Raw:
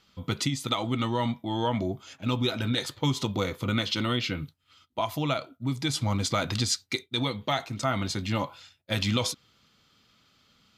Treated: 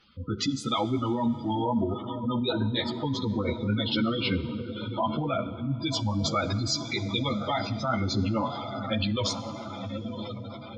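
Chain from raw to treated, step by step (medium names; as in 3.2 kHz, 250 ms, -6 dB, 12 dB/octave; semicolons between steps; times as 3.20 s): distance through air 64 m; on a send: echo that smears into a reverb 1045 ms, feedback 56%, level -9 dB; on the sum: spectral gate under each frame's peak -15 dB strong; peaking EQ 150 Hz -3.5 dB 0.77 oct; reverberation RT60 2.3 s, pre-delay 26 ms, DRR 15 dB; in parallel at +1 dB: compressor with a negative ratio -31 dBFS, ratio -1; on the sum: three-phase chorus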